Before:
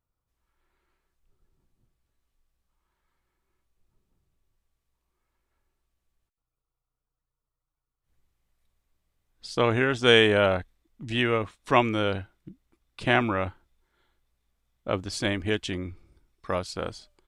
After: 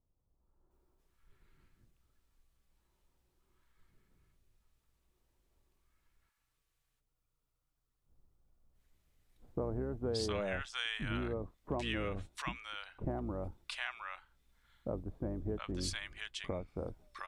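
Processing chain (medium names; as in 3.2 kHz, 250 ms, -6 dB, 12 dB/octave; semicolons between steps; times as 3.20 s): octave divider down 2 oct, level -3 dB; compression 3:1, threshold -40 dBFS, peak gain reduction 19.5 dB; bands offset in time lows, highs 710 ms, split 940 Hz; trim +2 dB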